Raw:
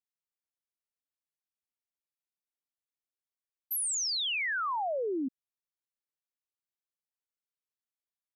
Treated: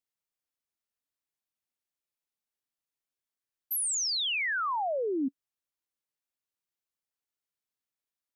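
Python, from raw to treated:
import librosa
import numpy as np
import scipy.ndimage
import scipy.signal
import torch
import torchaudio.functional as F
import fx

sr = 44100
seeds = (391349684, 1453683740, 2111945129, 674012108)

y = fx.peak_eq(x, sr, hz=280.0, db=2.5, octaves=0.23)
y = y * librosa.db_to_amplitude(1.5)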